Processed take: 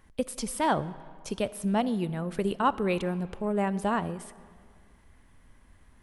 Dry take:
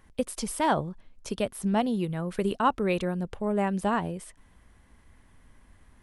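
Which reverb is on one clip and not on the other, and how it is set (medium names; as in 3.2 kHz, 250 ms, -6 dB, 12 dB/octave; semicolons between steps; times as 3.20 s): algorithmic reverb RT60 2 s, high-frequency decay 0.7×, pre-delay 5 ms, DRR 16.5 dB; trim -1 dB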